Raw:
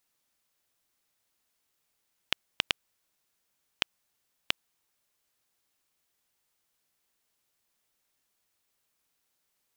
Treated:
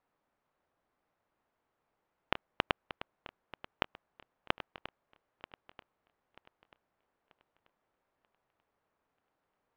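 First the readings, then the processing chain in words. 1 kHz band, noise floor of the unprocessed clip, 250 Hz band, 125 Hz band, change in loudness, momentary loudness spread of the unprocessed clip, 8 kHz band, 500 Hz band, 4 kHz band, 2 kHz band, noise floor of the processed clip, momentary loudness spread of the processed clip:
+6.0 dB, −78 dBFS, +5.5 dB, +4.5 dB, −5.5 dB, 3 LU, below −20 dB, +7.5 dB, −9.5 dB, −3.0 dB, −84 dBFS, 19 LU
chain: feedback delay that plays each chunk backwards 468 ms, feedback 59%, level −13 dB
low-pass filter 1,000 Hz 12 dB per octave
low-shelf EQ 440 Hz −7 dB
level +10.5 dB

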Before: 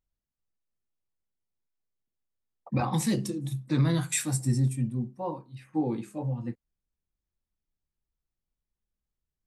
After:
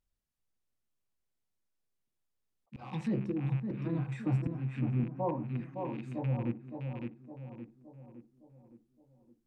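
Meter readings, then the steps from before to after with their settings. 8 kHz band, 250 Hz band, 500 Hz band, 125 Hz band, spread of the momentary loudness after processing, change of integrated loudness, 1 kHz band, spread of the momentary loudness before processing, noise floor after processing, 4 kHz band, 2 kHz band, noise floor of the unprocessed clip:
below −30 dB, −4.5 dB, −2.5 dB, −4.5 dB, 18 LU, −5.5 dB, −5.5 dB, 11 LU, −83 dBFS, below −15 dB, −9.0 dB, below −85 dBFS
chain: loose part that buzzes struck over −36 dBFS, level −29 dBFS
volume swells 691 ms
on a send: tape delay 564 ms, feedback 60%, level −4 dB, low-pass 1,000 Hz
on the sum: treble cut that deepens with the level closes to 1,100 Hz, closed at −31 dBFS
level +1 dB

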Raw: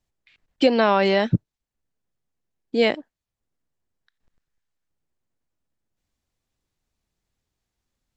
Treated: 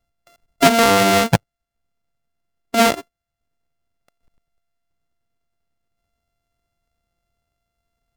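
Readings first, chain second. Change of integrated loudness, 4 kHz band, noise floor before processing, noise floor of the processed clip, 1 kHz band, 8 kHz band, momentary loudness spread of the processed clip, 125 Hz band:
+5.0 dB, +7.0 dB, below −85 dBFS, −82 dBFS, +7.5 dB, can't be measured, 9 LU, +3.5 dB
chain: samples sorted by size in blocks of 64 samples
highs frequency-modulated by the lows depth 0.32 ms
level +4.5 dB

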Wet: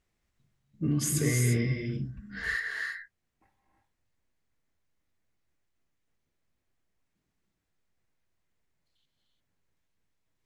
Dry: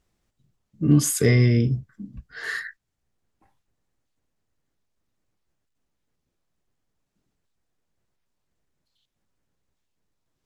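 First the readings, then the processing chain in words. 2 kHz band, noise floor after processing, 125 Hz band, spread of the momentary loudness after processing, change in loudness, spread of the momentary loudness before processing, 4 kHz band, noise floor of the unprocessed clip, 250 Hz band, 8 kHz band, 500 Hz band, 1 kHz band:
−1.0 dB, −81 dBFS, −8.0 dB, 11 LU, −8.5 dB, 21 LU, −5.5 dB, −79 dBFS, −8.5 dB, −4.0 dB, −10.0 dB, −5.0 dB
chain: parametric band 2,100 Hz +6 dB 0.75 octaves
brickwall limiter −14.5 dBFS, peak gain reduction 10 dB
reverb whose tail is shaped and stops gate 370 ms rising, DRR 1.5 dB
level −6 dB

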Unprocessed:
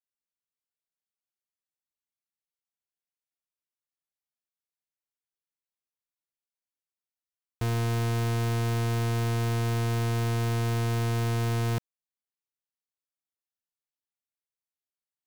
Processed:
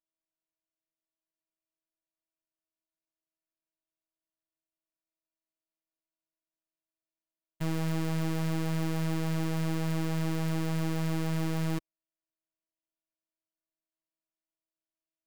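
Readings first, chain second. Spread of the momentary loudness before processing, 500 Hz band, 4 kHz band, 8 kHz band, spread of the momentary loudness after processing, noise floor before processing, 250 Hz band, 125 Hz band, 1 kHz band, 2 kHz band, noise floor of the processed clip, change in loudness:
1 LU, −4.5 dB, −4.5 dB, −4.5 dB, 2 LU, below −85 dBFS, +2.5 dB, −5.5 dB, −5.5 dB, −4.0 dB, below −85 dBFS, −3.5 dB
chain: samples sorted by size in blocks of 128 samples
low-shelf EQ 140 Hz +11 dB
phases set to zero 161 Hz
level −5 dB

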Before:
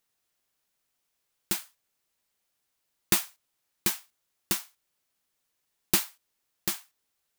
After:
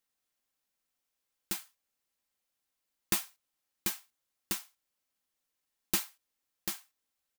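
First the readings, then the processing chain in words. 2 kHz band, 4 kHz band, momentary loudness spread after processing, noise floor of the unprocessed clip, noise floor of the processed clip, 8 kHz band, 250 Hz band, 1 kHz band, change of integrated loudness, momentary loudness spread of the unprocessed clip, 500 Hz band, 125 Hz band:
−6.0 dB, −6.0 dB, 12 LU, −79 dBFS, −85 dBFS, −6.0 dB, −6.5 dB, −6.0 dB, −6.0 dB, 12 LU, −7.5 dB, −7.5 dB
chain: comb filter 3.8 ms, depth 32%
level −6.5 dB

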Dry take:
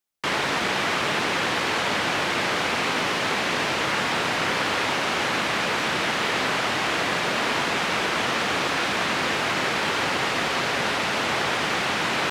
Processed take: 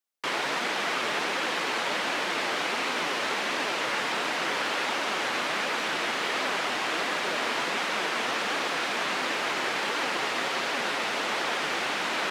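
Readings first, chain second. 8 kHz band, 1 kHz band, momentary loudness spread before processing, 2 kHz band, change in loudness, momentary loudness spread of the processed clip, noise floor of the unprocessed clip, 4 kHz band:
−4.5 dB, −4.5 dB, 0 LU, −4.0 dB, −4.5 dB, 0 LU, −25 dBFS, −4.0 dB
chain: high-pass filter 260 Hz 12 dB per octave
flanger 1.4 Hz, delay 2.9 ms, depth 6.1 ms, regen +66%

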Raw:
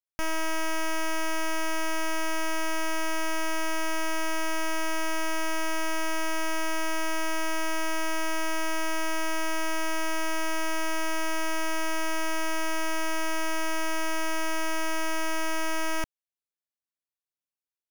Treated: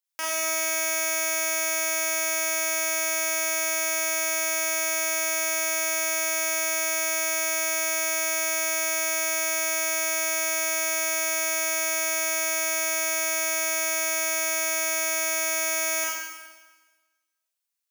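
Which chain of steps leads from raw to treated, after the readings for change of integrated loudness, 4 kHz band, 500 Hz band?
+6.5 dB, +3.5 dB, +3.5 dB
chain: high-pass filter 710 Hz 12 dB per octave
high-shelf EQ 3,300 Hz +7.5 dB
four-comb reverb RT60 1.3 s, combs from 32 ms, DRR −3 dB

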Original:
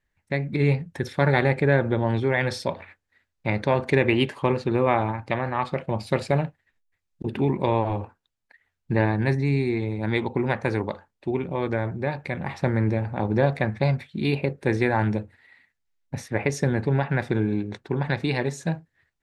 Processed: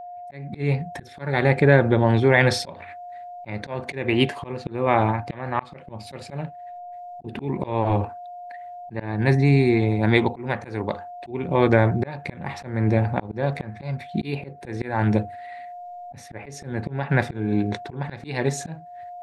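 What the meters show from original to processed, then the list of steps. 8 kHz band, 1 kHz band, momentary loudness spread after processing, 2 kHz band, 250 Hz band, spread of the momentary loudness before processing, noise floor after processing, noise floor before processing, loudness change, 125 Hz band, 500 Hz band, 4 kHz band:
can't be measured, +1.5 dB, 21 LU, +1.5 dB, +1.5 dB, 9 LU, −43 dBFS, −79 dBFS, +2.0 dB, +1.5 dB, +1.0 dB, +2.5 dB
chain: automatic gain control
steady tone 710 Hz −35 dBFS
volume swells 358 ms

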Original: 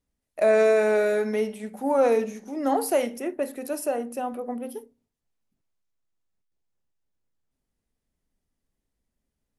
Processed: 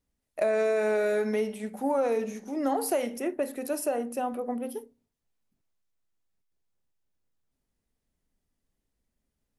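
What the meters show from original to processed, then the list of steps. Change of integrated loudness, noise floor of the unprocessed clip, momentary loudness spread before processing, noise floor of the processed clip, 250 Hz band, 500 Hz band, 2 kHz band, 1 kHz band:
−4.5 dB, −83 dBFS, 14 LU, −83 dBFS, −2.0 dB, −5.0 dB, −4.5 dB, −4.0 dB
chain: downward compressor 6 to 1, threshold −23 dBFS, peak gain reduction 7.5 dB

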